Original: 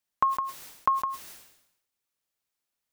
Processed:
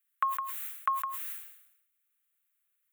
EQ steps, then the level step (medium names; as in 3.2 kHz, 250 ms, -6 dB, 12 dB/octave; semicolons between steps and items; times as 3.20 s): resonant high-pass 1.1 kHz, resonance Q 2.3; treble shelf 8.2 kHz +11 dB; static phaser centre 2.2 kHz, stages 4; 0.0 dB